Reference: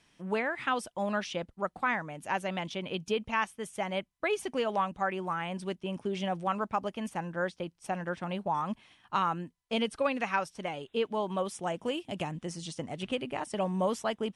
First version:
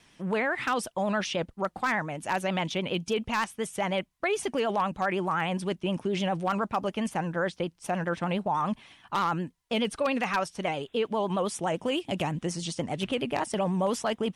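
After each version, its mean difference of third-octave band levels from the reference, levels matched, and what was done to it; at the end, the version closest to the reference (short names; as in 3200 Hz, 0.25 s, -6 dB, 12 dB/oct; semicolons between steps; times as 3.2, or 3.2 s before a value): 3.0 dB: in parallel at -1.5 dB: negative-ratio compressor -34 dBFS, ratio -1; on the sum: wavefolder -18 dBFS; vibrato 9.7 Hz 81 cents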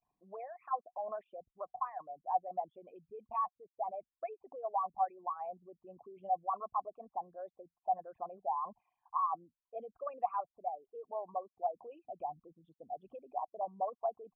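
16.0 dB: formant sharpening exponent 3; vibrato 0.31 Hz 56 cents; vocal tract filter a; gain +4.5 dB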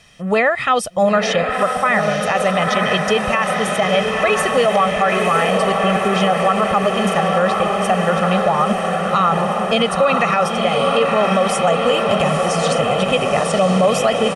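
9.0 dB: comb 1.6 ms, depth 70%; on a send: diffused feedback echo 0.957 s, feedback 73%, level -5 dB; on the sum: maximiser +20 dB; gain -5 dB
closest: first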